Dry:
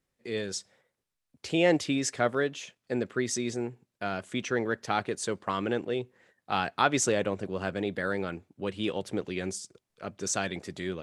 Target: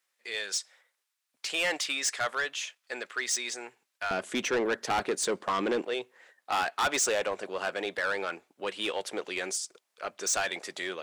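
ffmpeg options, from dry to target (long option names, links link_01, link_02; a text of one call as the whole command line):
ffmpeg -i in.wav -af "asetnsamples=nb_out_samples=441:pad=0,asendcmd='4.11 highpass f 290;5.82 highpass f 650',highpass=1100,asoftclip=type=tanh:threshold=-29.5dB,volume=7dB" out.wav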